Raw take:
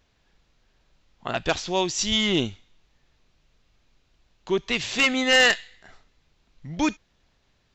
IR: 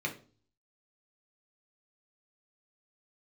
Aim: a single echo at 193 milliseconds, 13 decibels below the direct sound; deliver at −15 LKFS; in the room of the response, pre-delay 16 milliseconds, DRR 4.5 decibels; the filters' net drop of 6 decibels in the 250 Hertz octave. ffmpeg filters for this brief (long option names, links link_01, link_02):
-filter_complex "[0:a]equalizer=frequency=250:width_type=o:gain=-8,aecho=1:1:193:0.224,asplit=2[link_01][link_02];[1:a]atrim=start_sample=2205,adelay=16[link_03];[link_02][link_03]afir=irnorm=-1:irlink=0,volume=-9.5dB[link_04];[link_01][link_04]amix=inputs=2:normalize=0,volume=7dB"